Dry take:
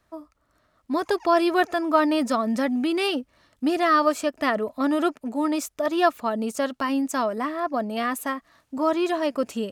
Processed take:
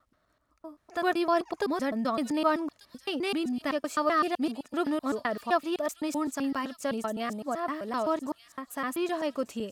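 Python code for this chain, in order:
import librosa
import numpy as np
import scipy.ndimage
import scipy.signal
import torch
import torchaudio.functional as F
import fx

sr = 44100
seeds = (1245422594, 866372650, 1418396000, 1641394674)

y = fx.block_reorder(x, sr, ms=128.0, group=7)
y = fx.echo_wet_highpass(y, sr, ms=1189, feedback_pct=45, hz=3800.0, wet_db=-9)
y = y * librosa.db_to_amplitude(-6.0)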